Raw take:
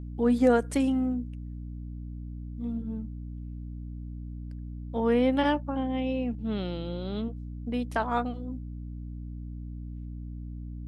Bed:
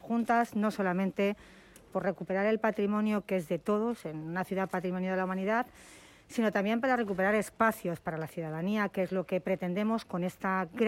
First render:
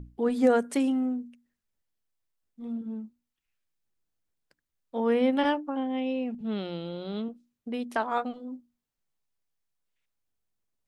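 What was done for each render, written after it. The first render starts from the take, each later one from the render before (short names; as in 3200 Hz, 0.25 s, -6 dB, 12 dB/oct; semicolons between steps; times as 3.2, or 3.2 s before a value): notches 60/120/180/240/300 Hz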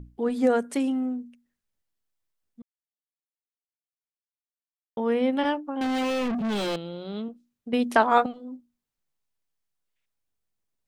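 2.62–4.97 mute; 5.81–6.76 overdrive pedal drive 36 dB, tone 3300 Hz, clips at -20.5 dBFS; 7.73–8.26 gain +9 dB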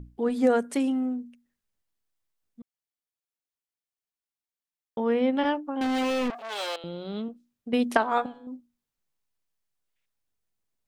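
5.02–5.55 air absorption 62 m; 6.3–6.84 HPF 550 Hz 24 dB/oct; 7.97–8.47 resonator 140 Hz, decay 0.75 s, mix 50%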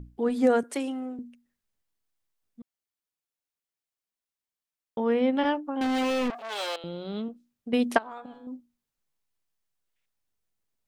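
0.63–1.19 HPF 310 Hz 24 dB/oct; 7.98–8.39 compressor 10:1, threshold -36 dBFS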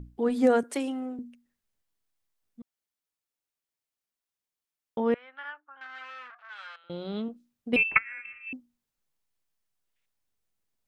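5.14–6.9 ladder band-pass 1600 Hz, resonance 65%; 7.76–8.53 inverted band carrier 2900 Hz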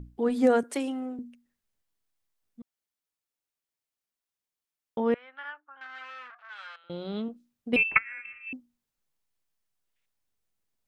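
nothing audible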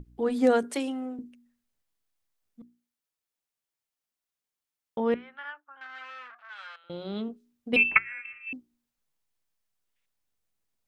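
notches 60/120/180/240/300/360/420 Hz; dynamic EQ 3900 Hz, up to +6 dB, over -46 dBFS, Q 1.4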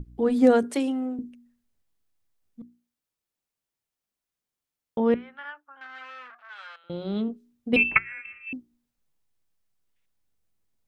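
low shelf 410 Hz +8 dB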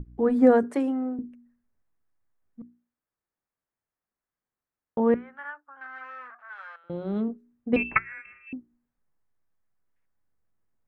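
resonant high shelf 2300 Hz -11.5 dB, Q 1.5; notch 1400 Hz, Q 27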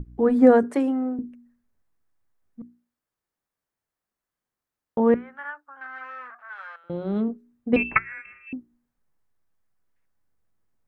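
gain +3 dB; limiter -3 dBFS, peak gain reduction 1 dB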